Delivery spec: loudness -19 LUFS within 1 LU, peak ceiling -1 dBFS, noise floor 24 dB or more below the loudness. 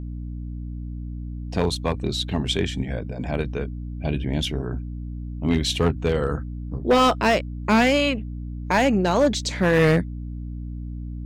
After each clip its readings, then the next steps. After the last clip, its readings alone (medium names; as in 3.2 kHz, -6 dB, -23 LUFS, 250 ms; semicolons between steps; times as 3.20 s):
clipped samples 1.2%; clipping level -12.0 dBFS; hum 60 Hz; highest harmonic 300 Hz; hum level -29 dBFS; loudness -23.0 LUFS; peak level -12.0 dBFS; loudness target -19.0 LUFS
-> clip repair -12 dBFS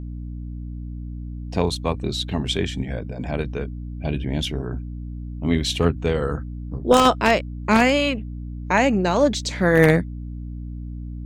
clipped samples 0.0%; hum 60 Hz; highest harmonic 300 Hz; hum level -29 dBFS
-> de-hum 60 Hz, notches 5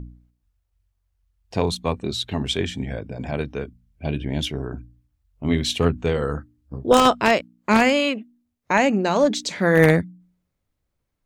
hum not found; loudness -21.5 LUFS; peak level -2.5 dBFS; loudness target -19.0 LUFS
-> trim +2.5 dB; peak limiter -1 dBFS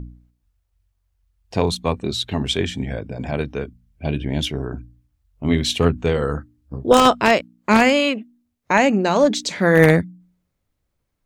loudness -19.0 LUFS; peak level -1.0 dBFS; noise floor -74 dBFS